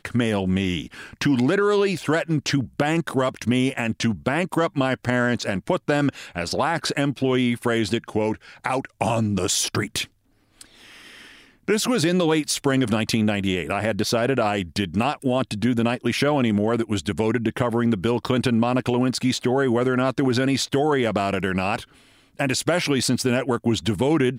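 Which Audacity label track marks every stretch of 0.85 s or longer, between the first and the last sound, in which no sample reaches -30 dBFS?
10.620000	11.680000	silence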